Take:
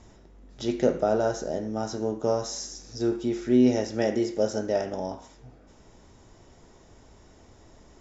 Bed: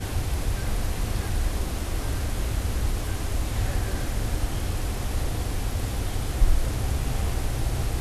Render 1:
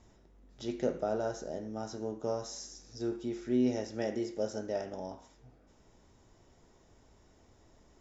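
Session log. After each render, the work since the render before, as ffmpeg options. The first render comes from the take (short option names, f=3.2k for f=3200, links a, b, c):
-af "volume=-9dB"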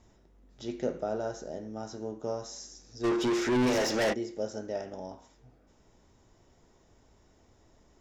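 -filter_complex "[0:a]asplit=3[a][b][c];[a]afade=t=out:st=3.03:d=0.02[d];[b]asplit=2[e][f];[f]highpass=f=720:p=1,volume=31dB,asoftclip=type=tanh:threshold=-19.5dB[g];[e][g]amix=inputs=2:normalize=0,lowpass=f=5.5k:p=1,volume=-6dB,afade=t=in:st=3.03:d=0.02,afade=t=out:st=4.12:d=0.02[h];[c]afade=t=in:st=4.12:d=0.02[i];[d][h][i]amix=inputs=3:normalize=0"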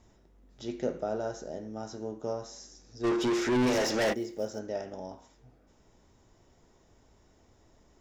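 -filter_complex "[0:a]asettb=1/sr,asplit=3[a][b][c];[a]atrim=end=2.334[d];[b]atrim=start=2.33:end=3.07,asetpts=PTS-STARTPTS,afade=t=in:d=0.004:c=qsin,afade=t=out:st=0.736:d=0.004:c=qsin,highshelf=f=4.8k:g=-6.5[e];[c]atrim=start=3.066[f];[d][e]acrossfade=d=0.004:c1=hsin:c2=qsin[g];[g][f]acrossfade=d=0.004:c1=qsin:c2=hsin,asettb=1/sr,asplit=3[h][i][j];[h]atrim=end=4.064[k];[i]atrim=start=4.06:end=4.59,asetpts=PTS-STARTPTS,afade=t=in:d=0.004:c=qsin,afade=t=out:st=0.526:d=0.004:c=qsin,acrusher=bits=8:mode=log:mix=0:aa=0.000001[l];[j]atrim=start=4.586[m];[k][l]acrossfade=d=0.004:c1=hsin:c2=qsin[n];[n][m]acrossfade=d=0.004:c1=qsin:c2=hsin"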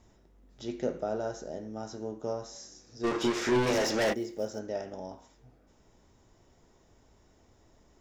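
-filter_complex "[0:a]asettb=1/sr,asplit=3[a][b][c];[a]atrim=end=2.524[d];[b]atrim=start=2.52:end=3.71,asetpts=PTS-STARTPTS,afade=t=in:d=0.004:c=qsin,afade=t=out:st=1.186:d=0.004:c=qsin,asplit=2[e][f];[f]adelay=30,volume=-4dB[g];[e][g]amix=inputs=2:normalize=0,atrim=end_sample=52479[h];[c]atrim=start=3.706[i];[d][h]acrossfade=d=0.004:c1=hsin:c2=qsin[j];[j][i]acrossfade=d=0.004:c1=qsin:c2=hsin"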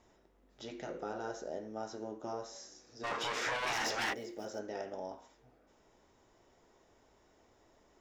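-af "afftfilt=real='re*lt(hypot(re,im),0.126)':imag='im*lt(hypot(re,im),0.126)':win_size=1024:overlap=0.75,bass=f=250:g=-11,treble=f=4k:g=-5"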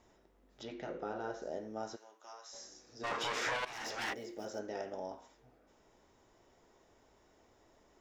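-filter_complex "[0:a]asettb=1/sr,asplit=3[a][b][c];[a]atrim=end=0.634[d];[b]atrim=start=0.63:end=1.42,asetpts=PTS-STARTPTS,afade=t=in:d=0.004:c=qsin,afade=t=out:st=0.786:d=0.004:c=qsin,lowpass=4.1k[e];[c]atrim=start=1.416[f];[d][e]acrossfade=d=0.004:c1=hsin:c2=qsin[g];[g][f]acrossfade=d=0.004:c1=qsin:c2=hsin,asplit=3[h][i][j];[h]afade=t=out:st=1.95:d=0.02[k];[i]highpass=1.4k,afade=t=in:st=1.95:d=0.02,afade=t=out:st=2.52:d=0.02[l];[j]afade=t=in:st=2.52:d=0.02[m];[k][l][m]amix=inputs=3:normalize=0,asplit=2[n][o];[n]atrim=end=3.65,asetpts=PTS-STARTPTS,afade=t=out:st=3.646:d=0.004:c=hsin:silence=0.158489[p];[o]atrim=start=3.65,asetpts=PTS-STARTPTS,afade=t=in:d=0.98:c=qsin:silence=0.158489[q];[p][q]concat=n=2:v=0:a=1"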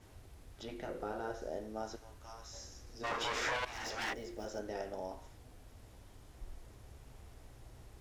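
-filter_complex "[1:a]volume=-29dB[a];[0:a][a]amix=inputs=2:normalize=0"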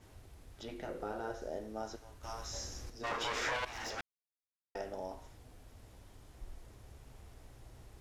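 -filter_complex "[0:a]asettb=1/sr,asplit=3[a][b][c];[a]atrim=end=2.234[d];[b]atrim=start=2.23:end=2.9,asetpts=PTS-STARTPTS,afade=t=in:d=0.004:c=qsin,afade=t=out:st=0.666:d=0.004:c=qsin,acontrast=83[e];[c]atrim=start=2.896[f];[d][e]acrossfade=d=0.004:c1=hsin:c2=qsin[g];[g][f]acrossfade=d=0.004:c1=qsin:c2=hsin,asplit=3[h][i][j];[h]atrim=end=4.01,asetpts=PTS-STARTPTS,afade=t=out:st=4.006:d=0.004:c=hsin[k];[i]atrim=start=4.01:end=4.75,asetpts=PTS-STARTPTS,volume=0[l];[j]atrim=start=4.75,asetpts=PTS-STARTPTS,afade=t=in:d=0.004:c=hsin[m];[k][l][m]concat=n=3:v=0:a=1"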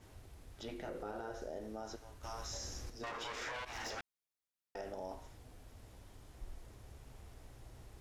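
-af "alimiter=level_in=10dB:limit=-24dB:level=0:latency=1:release=66,volume=-10dB"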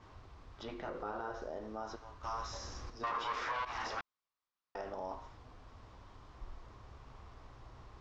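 -af "lowpass=f=5.6k:w=0.5412,lowpass=f=5.6k:w=1.3066,equalizer=f=1.1k:w=2.3:g=12.5"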